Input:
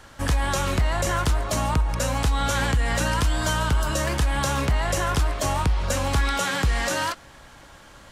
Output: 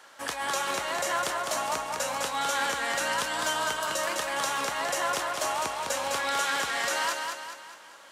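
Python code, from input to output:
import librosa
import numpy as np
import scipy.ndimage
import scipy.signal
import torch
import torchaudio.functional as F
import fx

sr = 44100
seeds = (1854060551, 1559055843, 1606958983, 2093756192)

p1 = scipy.signal.sosfilt(scipy.signal.butter(2, 510.0, 'highpass', fs=sr, output='sos'), x)
p2 = p1 + fx.echo_feedback(p1, sr, ms=206, feedback_pct=46, wet_db=-4.5, dry=0)
y = p2 * 10.0 ** (-3.0 / 20.0)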